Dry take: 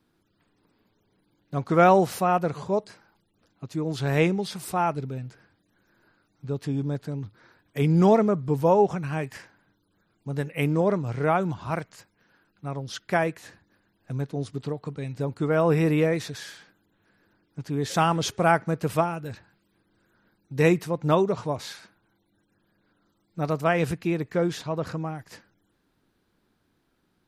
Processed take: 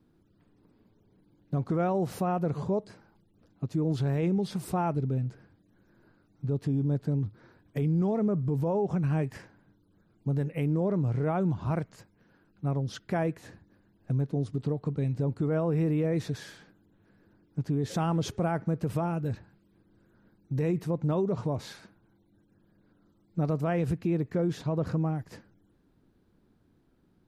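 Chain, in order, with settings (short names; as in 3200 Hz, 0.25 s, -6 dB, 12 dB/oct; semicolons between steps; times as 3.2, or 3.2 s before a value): tilt shelf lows +7 dB, about 670 Hz; compressor 1.5:1, threshold -27 dBFS, peak gain reduction 6 dB; limiter -20.5 dBFS, peak gain reduction 8.5 dB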